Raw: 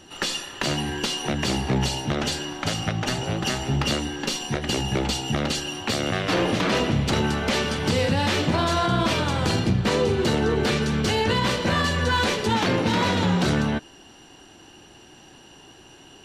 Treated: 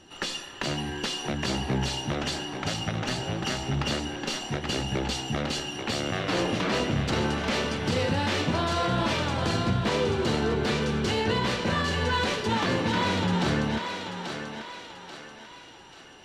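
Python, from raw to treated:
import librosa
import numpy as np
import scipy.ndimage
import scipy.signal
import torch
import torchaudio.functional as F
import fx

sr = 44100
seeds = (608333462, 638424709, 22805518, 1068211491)

y = fx.high_shelf(x, sr, hz=11000.0, db=-11.5)
y = fx.echo_thinned(y, sr, ms=837, feedback_pct=46, hz=420.0, wet_db=-5)
y = F.gain(torch.from_numpy(y), -4.5).numpy()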